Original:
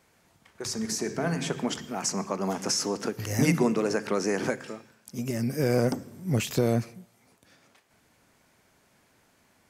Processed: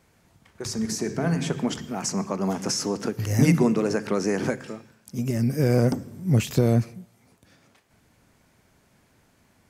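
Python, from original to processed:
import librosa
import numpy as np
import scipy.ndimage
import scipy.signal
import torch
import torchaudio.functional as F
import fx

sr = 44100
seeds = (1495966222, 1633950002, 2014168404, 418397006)

y = fx.low_shelf(x, sr, hz=220.0, db=9.5)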